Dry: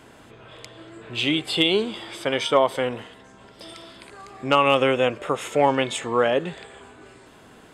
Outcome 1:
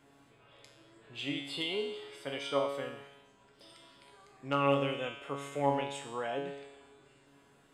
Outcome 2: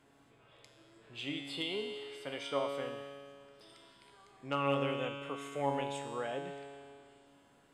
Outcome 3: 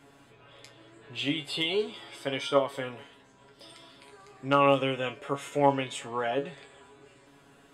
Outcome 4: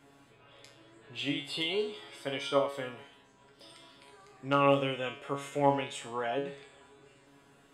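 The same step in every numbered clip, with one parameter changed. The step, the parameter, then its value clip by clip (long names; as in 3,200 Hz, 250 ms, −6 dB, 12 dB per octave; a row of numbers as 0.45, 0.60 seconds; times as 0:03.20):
tuned comb filter, decay: 0.94, 2.2, 0.19, 0.44 seconds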